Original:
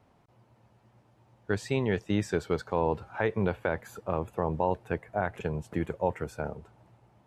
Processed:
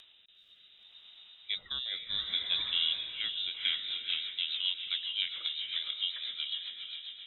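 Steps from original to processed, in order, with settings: upward compressor, threshold -41 dBFS; inverted band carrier 3800 Hz; on a send: diffused feedback echo 0.477 s, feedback 47%, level -3.5 dB; on the sum: rotary speaker horn 0.65 Hz, later 7.5 Hz, at 3.35; gain -4 dB

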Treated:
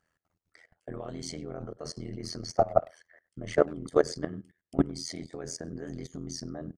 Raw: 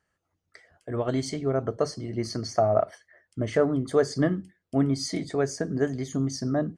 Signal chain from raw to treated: level quantiser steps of 20 dB; speakerphone echo 0.1 s, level -24 dB; AM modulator 83 Hz, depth 85%; gain +5.5 dB

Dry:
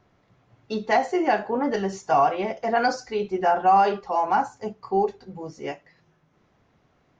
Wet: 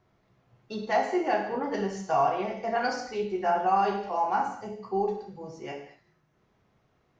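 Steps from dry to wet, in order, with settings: non-linear reverb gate 0.27 s falling, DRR 1.5 dB; gain -7 dB

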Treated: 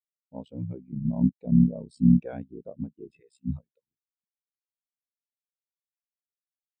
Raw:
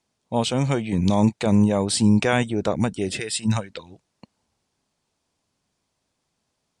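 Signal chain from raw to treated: ring modulator 32 Hz; spectral expander 2.5:1

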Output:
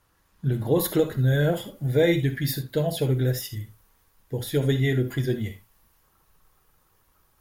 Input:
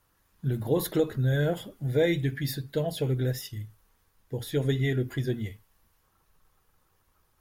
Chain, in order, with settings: high shelf 12000 Hz -7 dB, from 0.76 s +5.5 dB; reverb, pre-delay 3 ms, DRR 10 dB; gain +3.5 dB

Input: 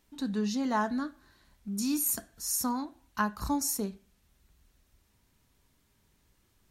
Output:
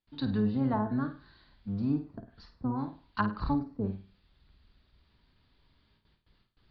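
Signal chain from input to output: octaver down 1 oct, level -4 dB; high shelf 2700 Hz +8.5 dB; treble ducked by the level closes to 560 Hz, closed at -22.5 dBFS; gate with hold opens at -55 dBFS; rippled Chebyshev low-pass 4800 Hz, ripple 3 dB; low shelf 360 Hz +4 dB; flutter echo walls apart 8.9 m, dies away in 0.34 s

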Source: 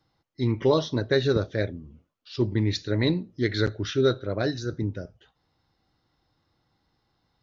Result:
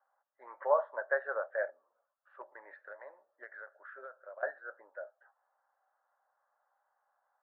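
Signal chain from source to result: Chebyshev band-pass 560–1700 Hz, order 4; 2.41–4.43 compressor 8:1, threshold -46 dBFS, peak gain reduction 19.5 dB

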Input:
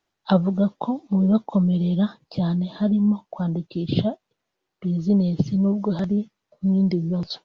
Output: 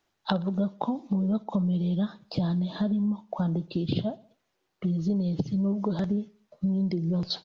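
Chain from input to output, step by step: compressor, threshold -27 dBFS, peak gain reduction 14 dB; on a send: feedback echo 61 ms, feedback 51%, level -21.5 dB; on the sum: gain +2.5 dB

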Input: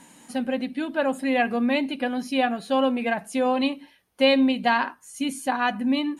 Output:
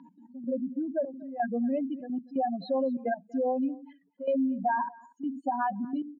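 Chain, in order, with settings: spectral contrast raised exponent 3.7; compressor 2:1, threshold -28 dBFS, peak gain reduction 7 dB; step gate "x.x..xxxxxx" 172 bpm -12 dB; elliptic band-pass 160–4100 Hz, stop band 40 dB; on a send: echo 0.239 s -24 dB

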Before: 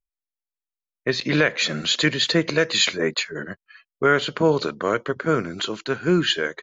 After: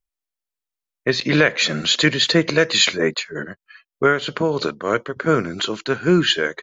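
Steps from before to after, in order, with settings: 3.09–5.17 tremolo 3.2 Hz, depth 55%; gain +3.5 dB

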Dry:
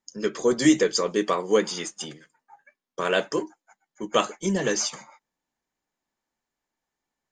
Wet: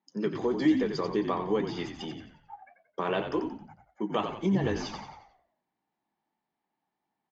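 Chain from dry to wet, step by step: high shelf 3100 Hz -9 dB; compressor 2:1, threshold -30 dBFS, peak gain reduction 9.5 dB; speaker cabinet 160–4600 Hz, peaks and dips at 190 Hz +7 dB, 330 Hz +4 dB, 530 Hz -5 dB, 840 Hz +8 dB, 1500 Hz -4 dB; frequency-shifting echo 89 ms, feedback 42%, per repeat -52 Hz, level -7.5 dB

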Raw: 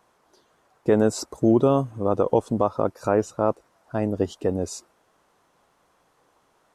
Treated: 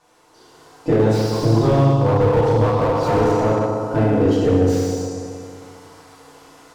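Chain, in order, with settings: half-wave gain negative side -3 dB; added noise blue -63 dBFS; LPF 6400 Hz 12 dB/oct; notches 60/120/180/240/300/360/420 Hz; compressor 2.5:1, threshold -30 dBFS, peak gain reduction 11 dB; 0.96–3.13 graphic EQ 125/250/1000/2000/4000 Hz +6/-11/+10/-6/+12 dB; FDN reverb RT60 2.2 s, low-frequency decay 1×, high-frequency decay 0.7×, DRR -9.5 dB; dynamic EQ 1000 Hz, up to -5 dB, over -35 dBFS, Q 1.1; AGC gain up to 9 dB; slew limiter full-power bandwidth 110 Hz

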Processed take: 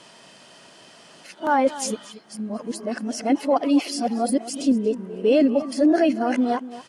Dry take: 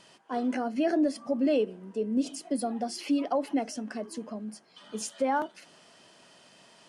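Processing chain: whole clip reversed; outdoor echo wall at 40 m, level -15 dB; gain +8 dB

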